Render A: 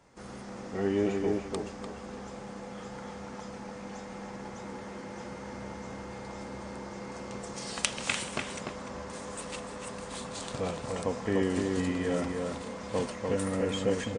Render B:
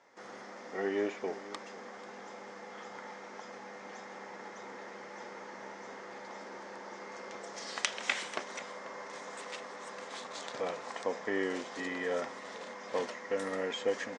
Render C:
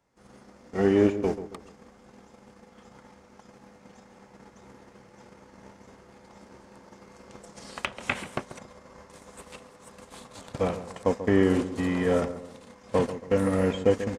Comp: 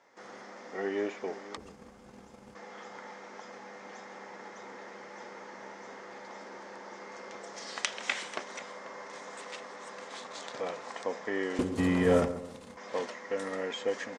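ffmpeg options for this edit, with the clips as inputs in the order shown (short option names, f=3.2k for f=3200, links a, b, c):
-filter_complex "[2:a]asplit=2[a][b];[1:a]asplit=3[c][d][e];[c]atrim=end=1.572[f];[a]atrim=start=1.568:end=2.552[g];[d]atrim=start=2.548:end=11.592[h];[b]atrim=start=11.588:end=12.772[i];[e]atrim=start=12.768[j];[f][g]acrossfade=d=0.004:c1=hsin:c2=hsin[k];[k][h]acrossfade=d=0.004:c1=hsin:c2=hsin[l];[l][i]acrossfade=d=0.004:c1=hsin:c2=hsin[m];[m][j]acrossfade=d=0.004:c1=hsin:c2=hsin"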